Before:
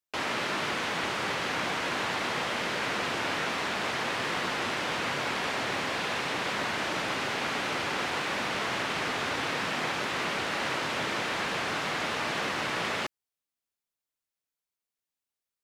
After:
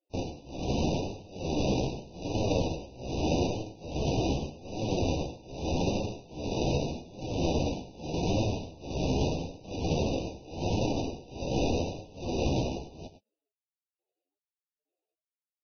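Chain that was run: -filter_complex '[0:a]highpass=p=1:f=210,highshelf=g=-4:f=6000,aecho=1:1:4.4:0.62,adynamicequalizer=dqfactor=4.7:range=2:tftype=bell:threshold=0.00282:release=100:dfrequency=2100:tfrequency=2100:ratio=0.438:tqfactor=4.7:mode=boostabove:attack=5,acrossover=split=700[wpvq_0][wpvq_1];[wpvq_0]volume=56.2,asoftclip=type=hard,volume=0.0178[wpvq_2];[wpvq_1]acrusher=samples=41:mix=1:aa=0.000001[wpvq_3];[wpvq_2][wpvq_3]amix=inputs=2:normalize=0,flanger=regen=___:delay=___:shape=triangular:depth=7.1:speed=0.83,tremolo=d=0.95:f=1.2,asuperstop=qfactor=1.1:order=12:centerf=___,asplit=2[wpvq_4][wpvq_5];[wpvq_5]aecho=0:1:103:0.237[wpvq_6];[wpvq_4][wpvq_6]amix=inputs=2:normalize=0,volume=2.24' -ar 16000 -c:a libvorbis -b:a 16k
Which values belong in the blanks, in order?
21, 9, 1600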